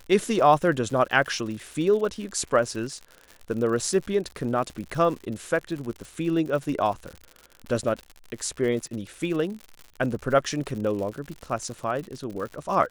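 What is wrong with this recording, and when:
crackle 100/s -33 dBFS

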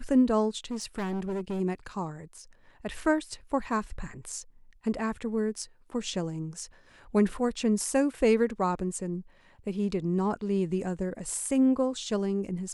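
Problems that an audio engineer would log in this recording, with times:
0.71–1.61 clipped -28.5 dBFS

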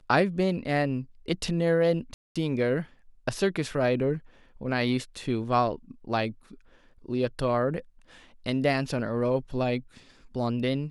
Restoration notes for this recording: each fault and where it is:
2.14–2.36 gap 0.216 s

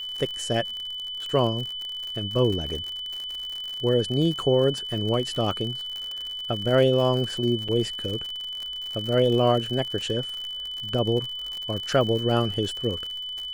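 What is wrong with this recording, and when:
crackle 73/s -30 dBFS
tone 3000 Hz -31 dBFS
7.68–7.69 gap 5.4 ms

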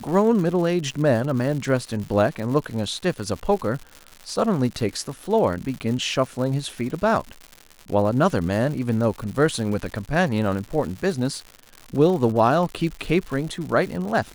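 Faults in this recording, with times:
crackle 180/s -30 dBFS

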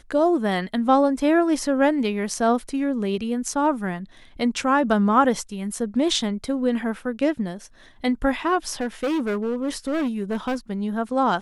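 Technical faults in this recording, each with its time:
8.71–10.56 clipped -20.5 dBFS

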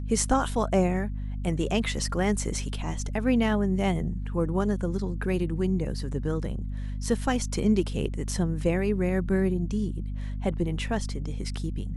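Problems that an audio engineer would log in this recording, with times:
hum 50 Hz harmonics 5 -32 dBFS

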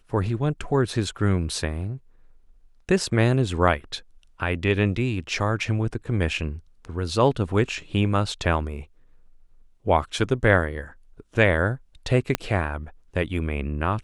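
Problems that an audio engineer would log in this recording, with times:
12.35 pop -7 dBFS

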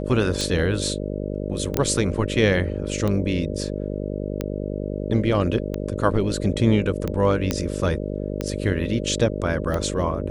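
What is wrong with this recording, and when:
buzz 50 Hz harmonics 12 -28 dBFS
tick 45 rpm
1.77 pop -6 dBFS
7.51 pop -7 dBFS

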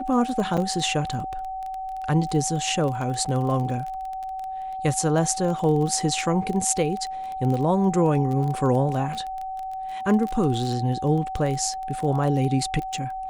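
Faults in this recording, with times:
crackle 20/s -28 dBFS
tone 760 Hz -29 dBFS
0.57–0.58 gap 5.9 ms
3.25–3.26 gap 6.1 ms

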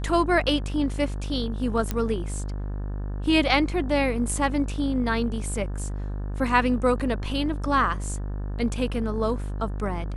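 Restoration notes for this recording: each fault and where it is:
buzz 50 Hz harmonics 36 -30 dBFS
1.91 pop -12 dBFS

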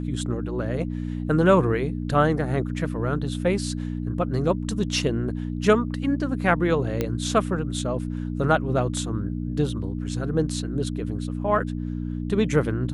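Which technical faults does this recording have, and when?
hum 60 Hz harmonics 5 -29 dBFS
7.01 pop -11 dBFS

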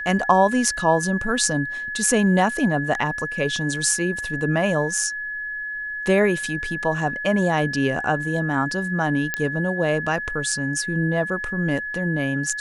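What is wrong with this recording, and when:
tone 1700 Hz -27 dBFS
9.34 pop -7 dBFS

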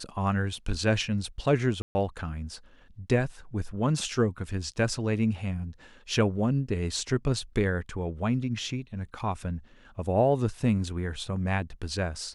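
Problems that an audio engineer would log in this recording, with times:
1.82–1.95 gap 0.13 s
9.19 gap 4.7 ms

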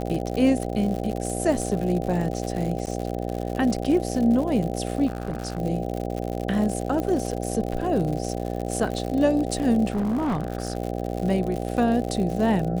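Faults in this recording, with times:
buzz 60 Hz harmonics 13 -29 dBFS
crackle 110/s -29 dBFS
2.86–2.87 gap 9 ms
5.06–5.59 clipped -23.5 dBFS
7 pop -16 dBFS
9.9–10.77 clipped -21 dBFS

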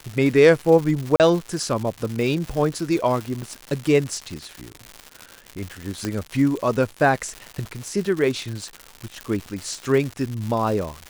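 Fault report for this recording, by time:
crackle 240/s -27 dBFS
1.16–1.2 gap 38 ms
3.42 gap 3.4 ms
6.05 pop -12 dBFS
9.21 pop -16 dBFS

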